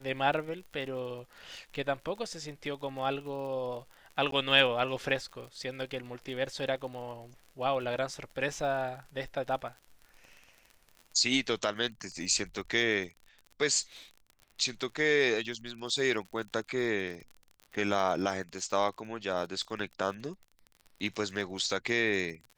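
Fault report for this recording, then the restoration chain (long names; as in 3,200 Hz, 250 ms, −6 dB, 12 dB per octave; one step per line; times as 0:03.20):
surface crackle 41 per second −40 dBFS
0:04.31–0:04.32: drop-out 13 ms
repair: click removal
repair the gap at 0:04.31, 13 ms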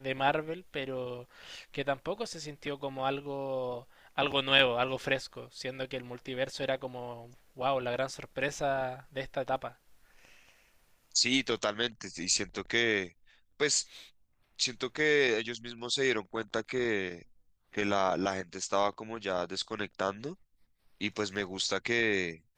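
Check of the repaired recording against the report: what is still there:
none of them is left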